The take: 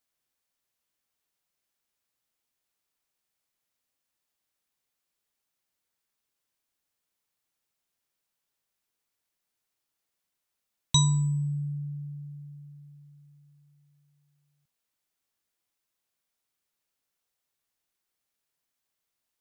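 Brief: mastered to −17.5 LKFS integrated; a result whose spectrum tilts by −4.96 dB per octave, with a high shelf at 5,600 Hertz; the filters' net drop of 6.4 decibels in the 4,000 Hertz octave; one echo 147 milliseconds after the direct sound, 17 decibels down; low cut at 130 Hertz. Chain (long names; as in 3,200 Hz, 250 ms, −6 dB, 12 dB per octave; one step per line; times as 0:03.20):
high-pass filter 130 Hz
parametric band 4,000 Hz −4 dB
high-shelf EQ 5,600 Hz −8 dB
single-tap delay 147 ms −17 dB
level +14 dB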